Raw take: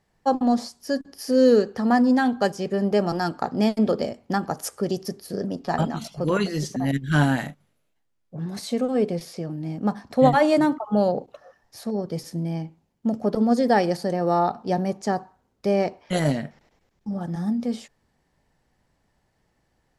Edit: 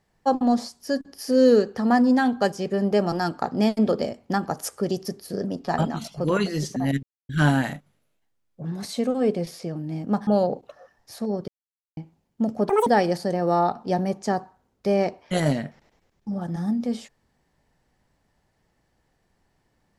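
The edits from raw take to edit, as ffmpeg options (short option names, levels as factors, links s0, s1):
-filter_complex "[0:a]asplit=7[s0][s1][s2][s3][s4][s5][s6];[s0]atrim=end=7.03,asetpts=PTS-STARTPTS,afade=t=out:st=7.026:d=0.004:c=hsin,apad=pad_dur=0.26[s7];[s1]atrim=start=7.03:end=10.012,asetpts=PTS-STARTPTS,afade=t=in:d=0.004:c=hsin[s8];[s2]atrim=start=10.918:end=12.13,asetpts=PTS-STARTPTS,afade=t=out:st=1.208:d=0.004:c=hsin[s9];[s3]atrim=start=12.13:end=12.62,asetpts=PTS-STARTPTS,volume=0[s10];[s4]atrim=start=12.62:end=13.344,asetpts=PTS-STARTPTS,afade=t=in:d=0.004:c=hsin[s11];[s5]atrim=start=13.34:end=13.66,asetpts=PTS-STARTPTS,asetrate=80262,aresample=44100[s12];[s6]atrim=start=13.656[s13];[s7][s8]concat=n=2:v=0:a=1[s14];[s9][s10][s11]concat=n=3:v=0:a=1[s15];[s14][s15]acrossfade=d=0.004:c1=hsin:c2=hsin[s16];[s16][s12]acrossfade=d=0.004:c1=hsin:c2=hsin[s17];[s17][s13]acrossfade=d=0.004:c1=hsin:c2=hsin"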